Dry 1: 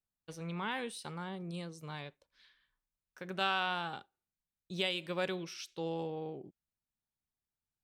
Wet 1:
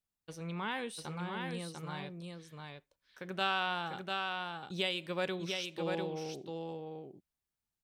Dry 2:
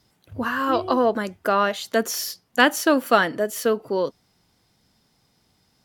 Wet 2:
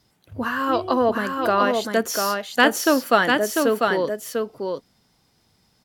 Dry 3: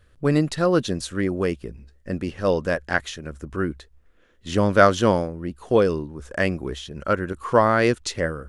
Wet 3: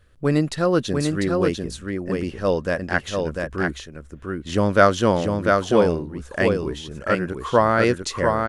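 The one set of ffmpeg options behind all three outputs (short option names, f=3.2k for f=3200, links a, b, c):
-af "aecho=1:1:696:0.631"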